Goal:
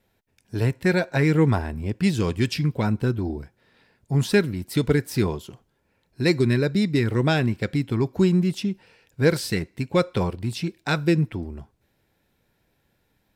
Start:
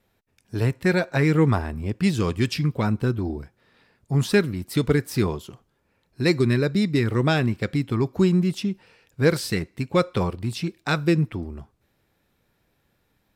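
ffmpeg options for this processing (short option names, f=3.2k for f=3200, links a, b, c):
-af "bandreject=f=1.2k:w=7.9"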